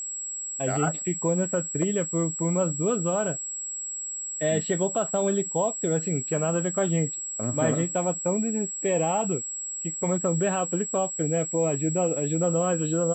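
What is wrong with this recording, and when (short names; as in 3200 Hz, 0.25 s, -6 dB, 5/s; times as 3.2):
tone 7700 Hz -31 dBFS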